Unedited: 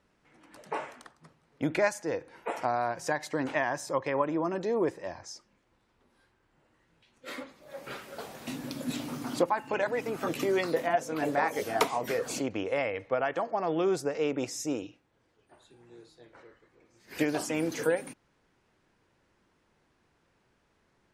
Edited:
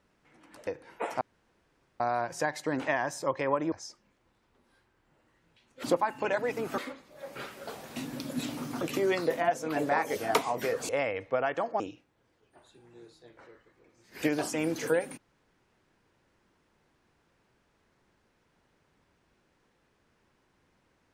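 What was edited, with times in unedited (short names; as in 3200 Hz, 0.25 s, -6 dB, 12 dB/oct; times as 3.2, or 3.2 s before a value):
0.67–2.13 cut
2.67 insert room tone 0.79 s
4.39–5.18 cut
9.32–10.27 move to 7.29
12.35–12.68 cut
13.59–14.76 cut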